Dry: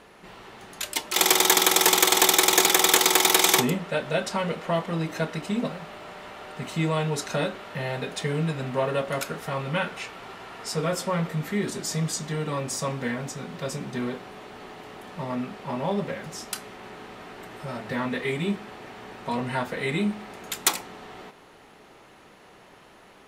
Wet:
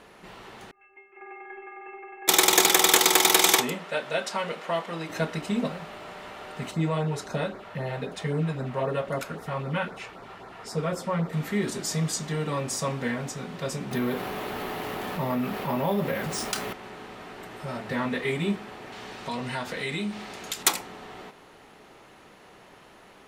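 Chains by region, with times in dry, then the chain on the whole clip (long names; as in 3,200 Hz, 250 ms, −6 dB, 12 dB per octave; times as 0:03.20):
0:00.71–0:02.28: Chebyshev low-pass filter 2,700 Hz, order 8 + stiff-string resonator 390 Hz, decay 0.55 s, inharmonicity 0.008
0:03.55–0:05.10: high-pass filter 510 Hz 6 dB per octave + high-shelf EQ 9,700 Hz −4 dB
0:06.71–0:11.33: auto-filter notch sine 3.8 Hz 240–3,100 Hz + high-shelf EQ 2,400 Hz −8.5 dB
0:13.91–0:16.73: low-pass filter 8,900 Hz + bad sample-rate conversion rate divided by 3×, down none, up hold + envelope flattener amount 50%
0:18.92–0:20.63: parametric band 5,000 Hz +8 dB 2 octaves + downward compressor 2 to 1, threshold −31 dBFS
whole clip: no processing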